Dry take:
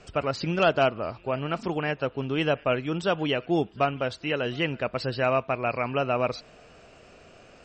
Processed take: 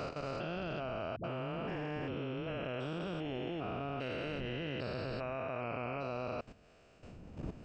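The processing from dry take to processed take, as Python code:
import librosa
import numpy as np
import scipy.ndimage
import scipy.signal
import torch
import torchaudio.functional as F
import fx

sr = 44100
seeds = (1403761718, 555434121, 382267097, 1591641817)

y = fx.spec_steps(x, sr, hold_ms=400)
y = fx.dmg_wind(y, sr, seeds[0], corner_hz=230.0, level_db=-45.0)
y = fx.level_steps(y, sr, step_db=12)
y = fx.dispersion(y, sr, late='highs', ms=80.0, hz=330.0, at=(1.16, 2.63))
y = F.gain(torch.from_numpy(y), -3.0).numpy()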